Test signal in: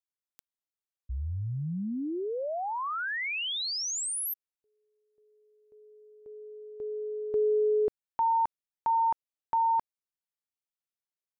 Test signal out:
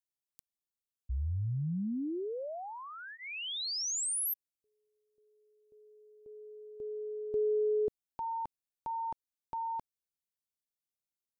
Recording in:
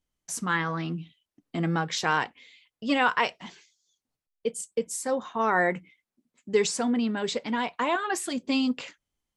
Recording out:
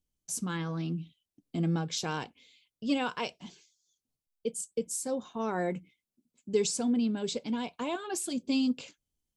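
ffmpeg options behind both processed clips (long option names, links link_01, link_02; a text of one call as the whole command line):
ffmpeg -i in.wav -af "equalizer=frequency=1300:width=0.55:gain=-13,bandreject=frequency=1900:width=5.9" out.wav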